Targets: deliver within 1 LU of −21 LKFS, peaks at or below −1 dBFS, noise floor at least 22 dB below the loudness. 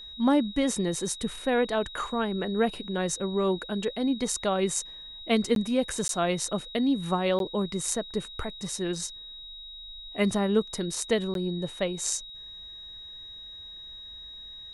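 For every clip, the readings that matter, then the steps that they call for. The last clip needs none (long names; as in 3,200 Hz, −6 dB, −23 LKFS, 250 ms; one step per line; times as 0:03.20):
number of dropouts 4; longest dropout 12 ms; interfering tone 3,800 Hz; level of the tone −41 dBFS; integrated loudness −28.0 LKFS; sample peak −10.5 dBFS; target loudness −21.0 LKFS
→ repair the gap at 0:05.55/0:06.08/0:07.39/0:11.34, 12 ms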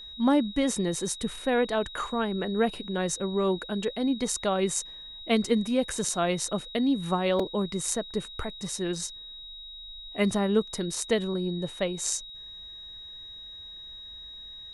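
number of dropouts 0; interfering tone 3,800 Hz; level of the tone −41 dBFS
→ notch filter 3,800 Hz, Q 30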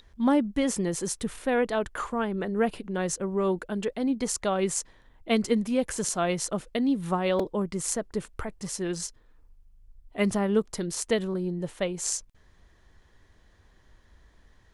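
interfering tone none found; integrated loudness −28.5 LKFS; sample peak −10.5 dBFS; target loudness −21.0 LKFS
→ level +7.5 dB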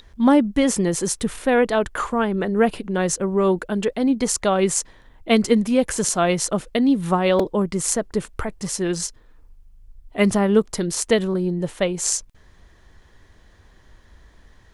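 integrated loudness −21.0 LKFS; sample peak −3.0 dBFS; background noise floor −53 dBFS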